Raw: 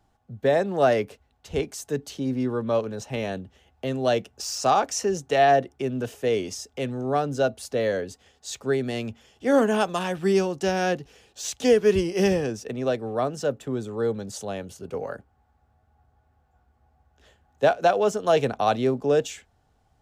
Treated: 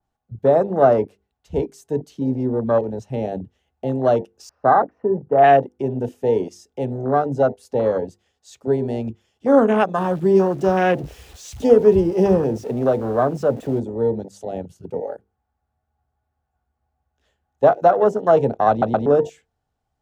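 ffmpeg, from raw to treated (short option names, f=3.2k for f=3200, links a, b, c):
-filter_complex "[0:a]asettb=1/sr,asplit=3[a][b][c];[a]atrim=end=4.494[d];[b]atrim=start=4.49:end=5.44,asetpts=PTS-STARTPTS,afade=t=in:d=0.004:c=qsin,afade=t=out:st=0.946:d=0.004:c=qsin,lowpass=f=1.5k:w=0.5412,lowpass=f=1.5k:w=1.3066[e];[c]atrim=start=5.436[f];[d][e]acrossfade=d=0.004:c1=hsin:c2=qsin[g];[g][f]acrossfade=d=0.004:c1=qsin:c2=hsin,asettb=1/sr,asplit=3[h][i][j];[h]atrim=end=9.984[k];[i]atrim=start=9.98:end=13.8,asetpts=PTS-STARTPTS,afade=t=in:d=0.004:c=qsin,afade=t=out:st=3.816:d=0.004:c=qsin,aeval=exprs='val(0)+0.5*0.0266*sgn(val(0))':c=same[l];[j]atrim=start=13.796[m];[k][l]acrossfade=d=0.004:c1=hsin:c2=qsin[n];[n][m]acrossfade=d=0.004:c1=qsin:c2=hsin,asplit=4[o][p][q][r];[o]atrim=end=18.822[s];[p]atrim=start=18.698:end=18.822[t];[q]atrim=start=18.698:end=18.822[u];[r]atrim=start=19.058[v];[s][t]acrossfade=d=0.004:c1=hsin:c2=hsin[w];[w][u]acrossfade=d=0.004:c1=hsin:c2=hsin[x];[x][v]acrossfade=d=0.004:c1=hsin:c2=hsin,bandreject=f=50:t=h:w=6,bandreject=f=100:t=h:w=6,bandreject=f=150:t=h:w=6,bandreject=f=200:t=h:w=6,bandreject=f=250:t=h:w=6,bandreject=f=300:t=h:w=6,bandreject=f=350:t=h:w=6,bandreject=f=400:t=h:w=6,bandreject=f=450:t=h:w=6,bandreject=f=500:t=h:w=6,afwtdn=0.0447,adynamicequalizer=threshold=0.01:dfrequency=2500:dqfactor=0.7:tfrequency=2500:tqfactor=0.7:attack=5:release=100:ratio=0.375:range=1.5:mode=cutabove:tftype=highshelf,volume=6dB"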